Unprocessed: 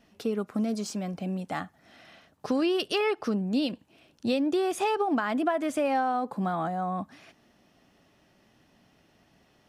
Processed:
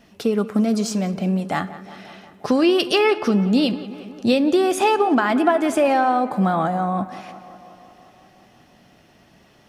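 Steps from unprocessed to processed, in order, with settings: tape echo 0.179 s, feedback 77%, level -15 dB, low-pass 3100 Hz; on a send at -11 dB: reverb RT60 0.85 s, pre-delay 3 ms; on the sum: gain +9 dB

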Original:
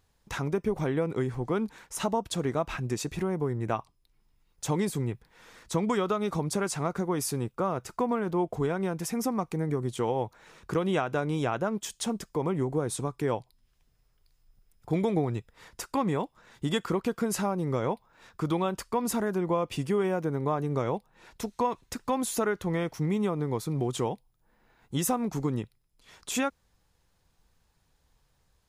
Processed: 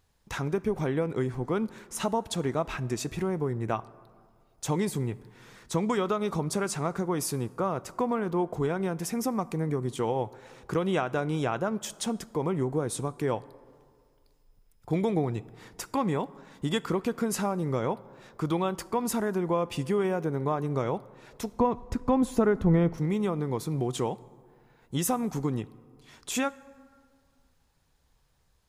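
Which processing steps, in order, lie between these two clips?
21.53–22.98 tilt -3.5 dB/oct; plate-style reverb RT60 2.1 s, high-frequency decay 0.45×, DRR 18.5 dB

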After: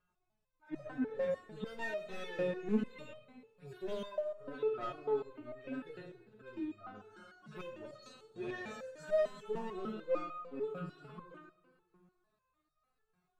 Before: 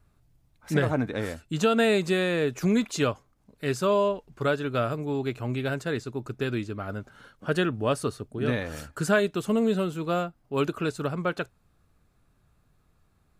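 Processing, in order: median-filter separation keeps harmonic; 6.95–9.46 bell 6700 Hz +15 dB 0.93 oct; overdrive pedal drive 22 dB, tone 1300 Hz, clips at -12.5 dBFS; hard clip -16 dBFS, distortion -28 dB; reverb RT60 1.5 s, pre-delay 3 ms, DRR 5.5 dB; stepped resonator 6.7 Hz 180–620 Hz; gain -2.5 dB

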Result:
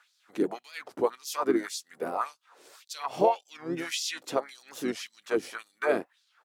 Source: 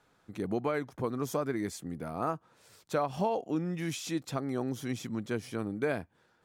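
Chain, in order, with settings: harmoniser -4 st -6 dB; LFO high-pass sine 1.8 Hz 310–4800 Hz; record warp 45 rpm, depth 160 cents; gain +3 dB

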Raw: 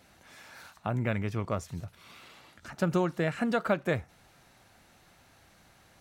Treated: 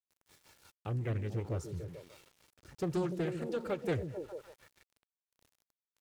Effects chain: bell 1400 Hz -9.5 dB 2.5 oct; comb 2.2 ms, depth 70%; rotary speaker horn 5.5 Hz, later 1.2 Hz, at 1.85; delay with a stepping band-pass 0.147 s, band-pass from 200 Hz, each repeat 0.7 oct, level -3 dB; sample gate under -53.5 dBFS; Doppler distortion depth 0.45 ms; gain -2.5 dB

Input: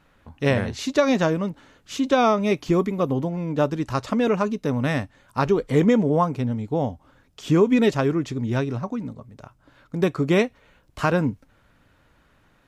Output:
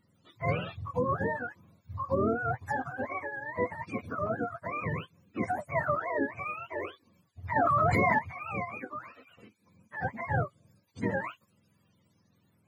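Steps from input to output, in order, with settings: spectrum mirrored in octaves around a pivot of 540 Hz; 7.56–8.19 fast leveller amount 100%; gain -8.5 dB

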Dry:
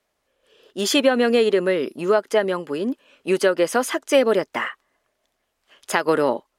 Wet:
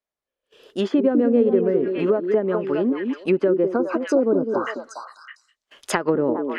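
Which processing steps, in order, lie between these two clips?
dynamic EQ 710 Hz, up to -7 dB, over -30 dBFS, Q 0.99; spectral delete 3.73–4.67, 1600–3800 Hz; gate -56 dBFS, range -22 dB; delay with a stepping band-pass 0.204 s, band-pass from 310 Hz, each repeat 1.4 oct, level -3 dB; treble ducked by the level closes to 630 Hz, closed at -18 dBFS; gain +3.5 dB

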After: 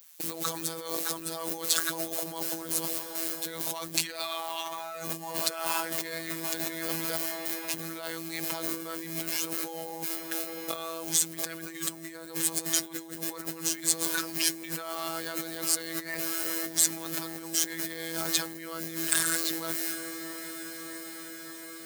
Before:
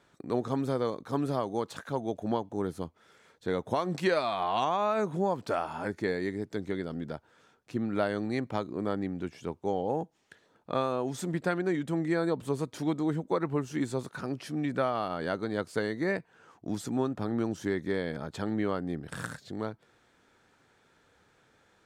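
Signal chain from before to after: bin magnitudes rounded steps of 15 dB; notches 50/100/150/200 Hz; in parallel at -1.5 dB: limiter -24 dBFS, peak gain reduction 9 dB; on the sum: high shelf 3800 Hz +8.5 dB; requantised 8-bit, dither triangular; gate with hold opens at -37 dBFS; robotiser 164 Hz; on a send: diffused feedback echo 0.723 s, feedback 75%, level -16 dB; on the sum: negative-ratio compressor -34 dBFS, ratio -1; tilt +3.5 dB/oct

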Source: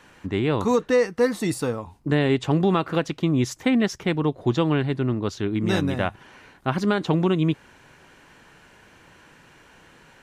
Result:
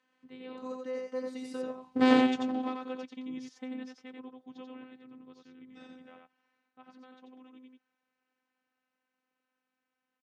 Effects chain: Doppler pass-by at 2.08, 17 m/s, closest 1.3 m; dynamic EQ 2000 Hz, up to -4 dB, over -55 dBFS, Q 0.89; one-sided clip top -34 dBFS; on a send: echo 89 ms -3.5 dB; on the sum: robotiser 256 Hz; BPF 150–5600 Hz; gain +6.5 dB

